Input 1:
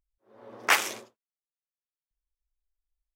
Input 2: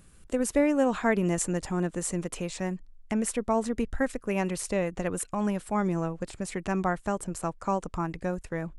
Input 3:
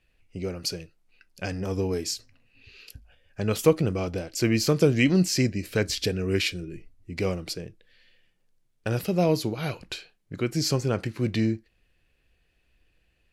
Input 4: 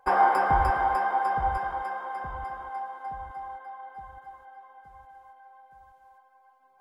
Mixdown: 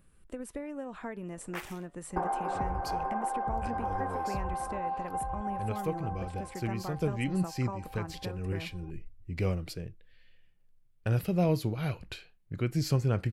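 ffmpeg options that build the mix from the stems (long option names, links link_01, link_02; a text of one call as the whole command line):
ffmpeg -i stem1.wav -i stem2.wav -i stem3.wav -i stem4.wav -filter_complex "[0:a]acrossover=split=1400[link_01][link_02];[link_01]aeval=exprs='val(0)*(1-0.7/2+0.7/2*cos(2*PI*1.7*n/s))':channel_layout=same[link_03];[link_02]aeval=exprs='val(0)*(1-0.7/2-0.7/2*cos(2*PI*1.7*n/s))':channel_layout=same[link_04];[link_03][link_04]amix=inputs=2:normalize=0,adelay=850,volume=-14dB[link_05];[1:a]bandreject=frequency=6800:width=11,acompressor=threshold=-28dB:ratio=5,flanger=delay=1.7:depth=6.9:regen=84:speed=0.32:shape=triangular,volume=-3dB,asplit=2[link_06][link_07];[2:a]asubboost=boost=2.5:cutoff=160,adelay=2200,volume=-4.5dB[link_08];[3:a]tiltshelf=frequency=1300:gain=9.5,acompressor=threshold=-28dB:ratio=10,adelay=2100,volume=-1.5dB[link_09];[link_07]apad=whole_len=684478[link_10];[link_08][link_10]sidechaincompress=threshold=-45dB:ratio=8:attack=24:release=428[link_11];[link_05][link_06][link_11][link_09]amix=inputs=4:normalize=0,equalizer=frequency=5800:width=0.93:gain=-7.5" out.wav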